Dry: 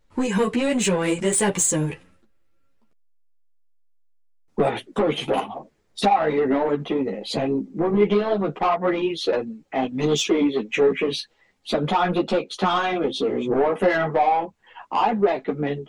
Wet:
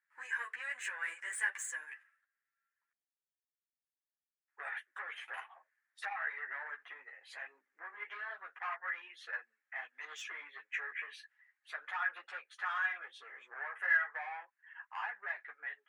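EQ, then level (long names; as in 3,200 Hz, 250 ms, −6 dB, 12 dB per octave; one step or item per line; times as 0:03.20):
four-pole ladder high-pass 1,600 Hz, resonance 75%
high-shelf EQ 2,400 Hz −11.5 dB
parametric band 3,900 Hz −11.5 dB 1.4 octaves
+4.0 dB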